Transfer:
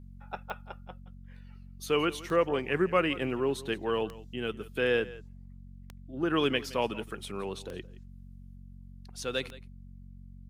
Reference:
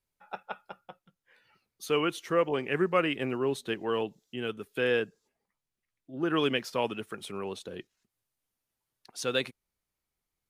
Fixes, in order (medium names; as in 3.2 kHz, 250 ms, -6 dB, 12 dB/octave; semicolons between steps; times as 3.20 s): de-click; de-hum 46.2 Hz, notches 5; inverse comb 170 ms -18.5 dB; trim 0 dB, from 8.56 s +3.5 dB